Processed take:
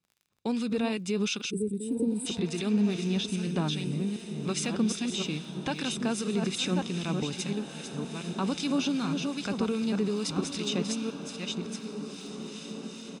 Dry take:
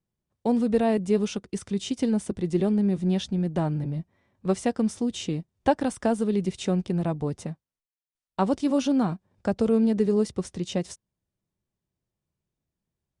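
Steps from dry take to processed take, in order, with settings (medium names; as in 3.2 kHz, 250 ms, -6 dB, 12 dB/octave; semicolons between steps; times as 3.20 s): chunks repeated in reverse 694 ms, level -7 dB; frequency weighting D; time-frequency box 1.50–2.26 s, 550–7700 Hz -30 dB; comb 0.8 ms, depth 47%; peak limiter -19 dBFS, peak gain reduction 9 dB; crackle 38 per s -47 dBFS; on a send: echo that smears into a reverb 1933 ms, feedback 51%, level -10 dB; on the sum: harmonic tremolo 2.5 Hz, depth 50%, crossover 1.4 kHz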